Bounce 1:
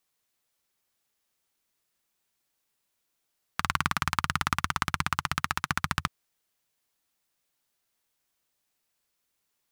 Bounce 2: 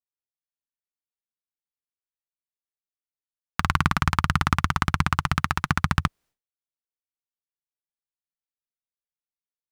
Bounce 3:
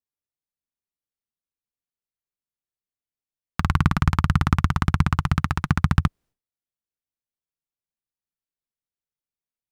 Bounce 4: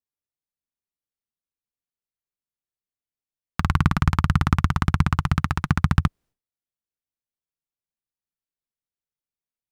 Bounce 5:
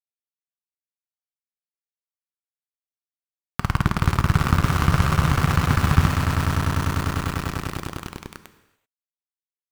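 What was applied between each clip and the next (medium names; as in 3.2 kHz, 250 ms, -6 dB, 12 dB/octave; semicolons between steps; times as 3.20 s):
tilt EQ -2 dB/octave; expander -55 dBFS; trim +5 dB
bass shelf 480 Hz +10.5 dB; trim -4.5 dB
no audible change
echo with a slow build-up 99 ms, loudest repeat 8, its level -10.5 dB; small samples zeroed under -21 dBFS; gated-style reverb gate 410 ms falling, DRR 10.5 dB; trim -1 dB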